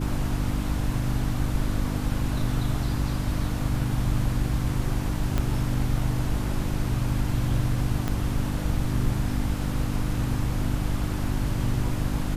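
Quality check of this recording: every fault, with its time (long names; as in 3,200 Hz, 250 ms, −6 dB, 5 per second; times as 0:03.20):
mains hum 50 Hz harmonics 6 −30 dBFS
0:05.38: click −12 dBFS
0:08.08: click −14 dBFS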